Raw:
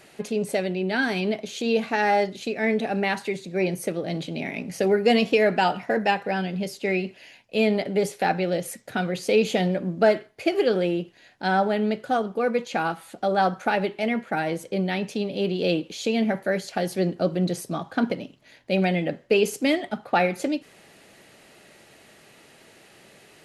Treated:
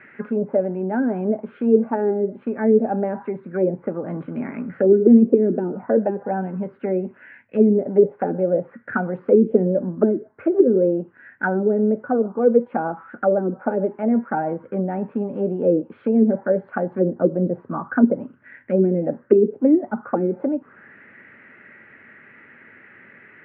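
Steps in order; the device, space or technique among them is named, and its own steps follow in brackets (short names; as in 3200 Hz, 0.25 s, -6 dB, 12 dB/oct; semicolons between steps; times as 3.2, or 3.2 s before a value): envelope filter bass rig (envelope low-pass 340–2100 Hz down, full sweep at -16.5 dBFS; speaker cabinet 81–2400 Hz, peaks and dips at 100 Hz +6 dB, 240 Hz +9 dB, 710 Hz -9 dB, 1500 Hz +8 dB); gain -1 dB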